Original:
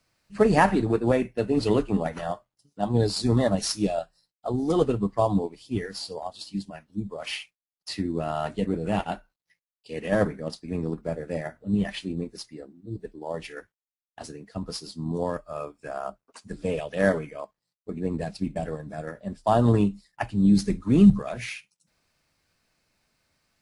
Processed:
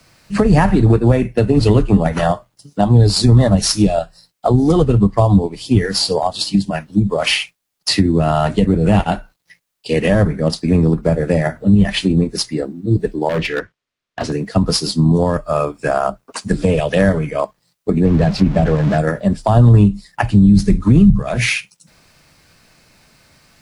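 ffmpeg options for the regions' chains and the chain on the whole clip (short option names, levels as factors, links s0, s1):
-filter_complex "[0:a]asettb=1/sr,asplit=3[s0][s1][s2];[s0]atrim=end=13.294[s3];[s1]atrim=start=13.29:end=14.32,asetpts=PTS-STARTPTS,afade=t=in:d=0.004:c=qsin,afade=t=out:st=1.026:d=0.004:c=qsin,lowpass=4000,bandreject=f=820:w=5.9,asoftclip=type=hard:threshold=0.0211[s4];[s2]atrim=start=14.316[s5];[s3][s4]acrossfade=d=0.004:c1=hsin:c2=qsin[s6];[s6][s5]acrossfade=d=0.004:c1=qsin:c2=hsin,asettb=1/sr,asplit=3[s7][s8][s9];[s7]atrim=end=18.054[s10];[s8]atrim=start=18.05:end=18.98,asetpts=PTS-STARTPTS,afade=t=in:d=0.004:c=qsin,afade=t=out:st=0.926:d=0.004:c=qsin,aeval=exprs='val(0)+0.5*0.0141*sgn(val(0))':c=same,lowpass=6900,aemphasis=mode=reproduction:type=cd[s11];[s9]atrim=start=18.976[s12];[s10][s11]acrossfade=d=0.004:c1=hsin:c2=qsin[s13];[s13][s12]acrossfade=d=0.004:c1=qsin:c2=hsin,equalizer=f=150:w=1.7:g=3.5,acrossover=split=120[s14][s15];[s15]acompressor=threshold=0.0251:ratio=8[s16];[s14][s16]amix=inputs=2:normalize=0,alimiter=level_in=11.2:limit=0.891:release=50:level=0:latency=1,volume=0.891"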